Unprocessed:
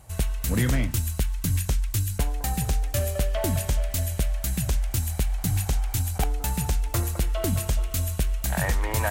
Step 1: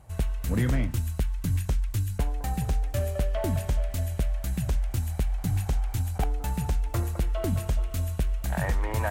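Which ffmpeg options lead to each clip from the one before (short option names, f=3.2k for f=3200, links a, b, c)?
-af "highshelf=f=2.7k:g=-10,volume=-1.5dB"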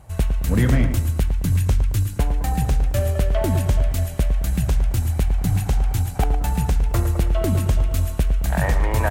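-filter_complex "[0:a]aeval=exprs='0.126*(cos(1*acos(clip(val(0)/0.126,-1,1)))-cos(1*PI/2))+0.00398*(cos(3*acos(clip(val(0)/0.126,-1,1)))-cos(3*PI/2))':c=same,asplit=2[a][b];[b]adelay=110,lowpass=f=2k:p=1,volume=-8dB,asplit=2[c][d];[d]adelay=110,lowpass=f=2k:p=1,volume=0.49,asplit=2[e][f];[f]adelay=110,lowpass=f=2k:p=1,volume=0.49,asplit=2[g][h];[h]adelay=110,lowpass=f=2k:p=1,volume=0.49,asplit=2[i][j];[j]adelay=110,lowpass=f=2k:p=1,volume=0.49,asplit=2[k][l];[l]adelay=110,lowpass=f=2k:p=1,volume=0.49[m];[a][c][e][g][i][k][m]amix=inputs=7:normalize=0,volume=7dB"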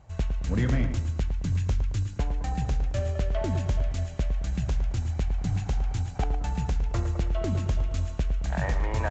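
-af "aresample=16000,aresample=44100,volume=-7.5dB"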